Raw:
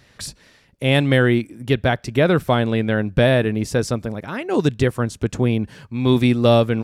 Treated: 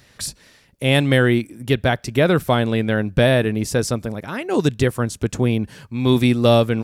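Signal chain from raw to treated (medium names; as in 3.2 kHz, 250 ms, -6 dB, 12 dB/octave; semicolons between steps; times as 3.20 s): treble shelf 6.8 kHz +8.5 dB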